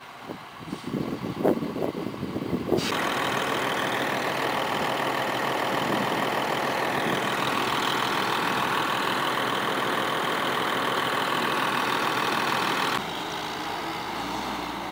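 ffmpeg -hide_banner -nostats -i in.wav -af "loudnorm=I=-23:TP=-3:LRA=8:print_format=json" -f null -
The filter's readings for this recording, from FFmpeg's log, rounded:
"input_i" : "-26.3",
"input_tp" : "-8.4",
"input_lra" : "2.6",
"input_thresh" : "-36.4",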